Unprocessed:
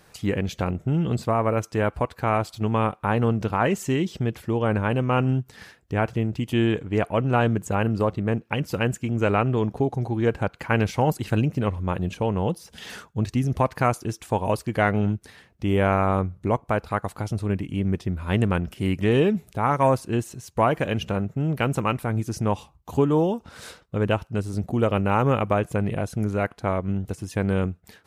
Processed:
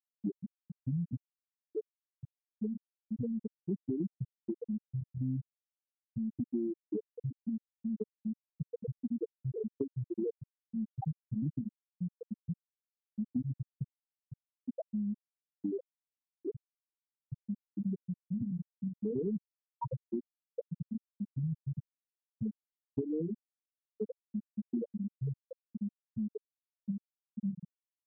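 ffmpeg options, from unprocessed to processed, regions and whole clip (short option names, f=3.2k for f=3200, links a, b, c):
-filter_complex "[0:a]asettb=1/sr,asplit=3[a][b][c];[a]atrim=end=6.464[d];[b]atrim=start=6.46:end=9.83,asetpts=PTS-STARTPTS,afade=t=in:d=0.004:c=qsin,afade=t=out:st=3.366:d=0.004:c=qsin,highpass=f=89:p=1,aecho=1:1:264|528|792:0.188|0.0622|0.0205,atrim=end_sample=148617[e];[c]atrim=start=9.826[f];[d][e]acrossfade=d=0.004:c1=hsin:c2=qsin[g];[g][f]acrossfade=d=0.004:c1=qsin:c2=hsin,acrossover=split=150|320|1100[h][i][j][k];[h]acompressor=threshold=-40dB:ratio=4[l];[i]acompressor=threshold=-26dB:ratio=4[m];[j]acompressor=threshold=-32dB:ratio=4[n];[k]acompressor=threshold=-33dB:ratio=4[o];[l][m][n][o]amix=inputs=4:normalize=0,afftfilt=real='re*gte(hypot(re,im),0.398)':imag='im*gte(hypot(re,im),0.398)':win_size=1024:overlap=0.75,acompressor=threshold=-36dB:ratio=2.5,volume=2dB"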